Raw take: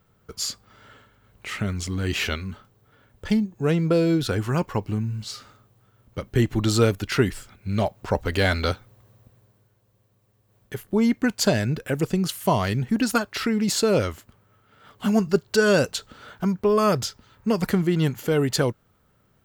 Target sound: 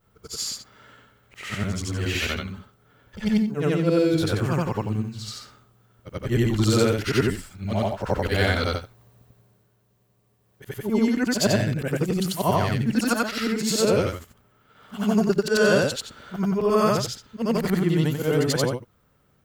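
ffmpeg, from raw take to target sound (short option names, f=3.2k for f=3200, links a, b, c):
-af "afftfilt=real='re':imag='-im':win_size=8192:overlap=0.75,volume=4.5dB"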